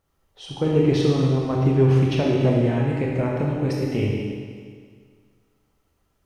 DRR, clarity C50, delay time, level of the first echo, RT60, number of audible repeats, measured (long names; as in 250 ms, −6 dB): −3.0 dB, 0.0 dB, no echo audible, no echo audible, 1.9 s, no echo audible